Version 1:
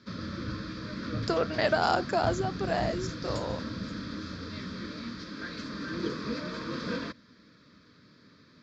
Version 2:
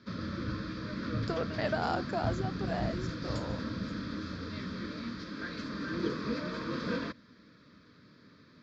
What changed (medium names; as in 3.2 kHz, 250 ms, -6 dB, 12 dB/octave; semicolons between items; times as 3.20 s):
speech -6.5 dB; master: add treble shelf 5.2 kHz -8 dB